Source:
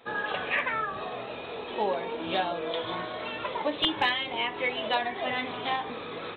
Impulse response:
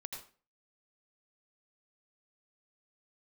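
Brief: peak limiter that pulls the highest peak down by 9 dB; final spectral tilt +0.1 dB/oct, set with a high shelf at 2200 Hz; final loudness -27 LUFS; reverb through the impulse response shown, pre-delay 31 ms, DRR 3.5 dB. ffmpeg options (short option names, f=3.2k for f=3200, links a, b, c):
-filter_complex "[0:a]highshelf=f=2.2k:g=7.5,alimiter=limit=-20dB:level=0:latency=1,asplit=2[a][b];[1:a]atrim=start_sample=2205,adelay=31[c];[b][c]afir=irnorm=-1:irlink=0,volume=-1dB[d];[a][d]amix=inputs=2:normalize=0,volume=1.5dB"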